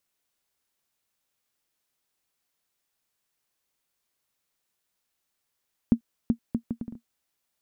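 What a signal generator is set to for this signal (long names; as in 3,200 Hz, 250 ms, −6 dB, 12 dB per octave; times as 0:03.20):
bouncing ball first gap 0.38 s, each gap 0.65, 232 Hz, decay 88 ms −8.5 dBFS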